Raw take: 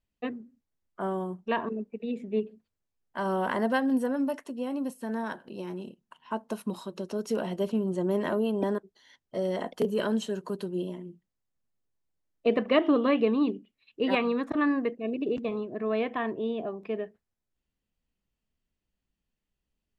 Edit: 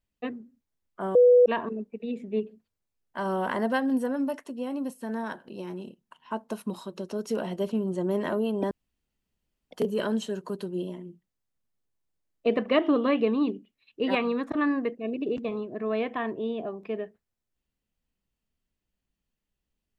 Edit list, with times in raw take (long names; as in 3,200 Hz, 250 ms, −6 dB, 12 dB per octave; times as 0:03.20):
0:01.15–0:01.46: beep over 492 Hz −13 dBFS
0:08.71–0:09.71: fill with room tone